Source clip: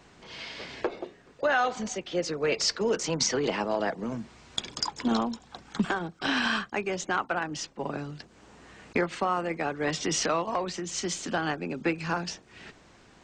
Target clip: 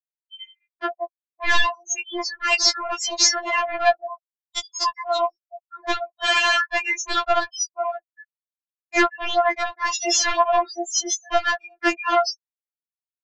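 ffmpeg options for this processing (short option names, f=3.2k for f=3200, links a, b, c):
-af "aeval=exprs='if(lt(val(0),0),0.251*val(0),val(0))':c=same,highpass=f=540:w=0.5412,highpass=f=540:w=1.3066,afftfilt=real='re*gte(hypot(re,im),0.0282)':imag='im*gte(hypot(re,im),0.0282)':win_size=1024:overlap=0.75,acontrast=60,aresample=16000,aeval=exprs='0.299*sin(PI/2*2.82*val(0)/0.299)':c=same,aresample=44100,afftfilt=real='re*4*eq(mod(b,16),0)':imag='im*4*eq(mod(b,16),0)':win_size=2048:overlap=0.75"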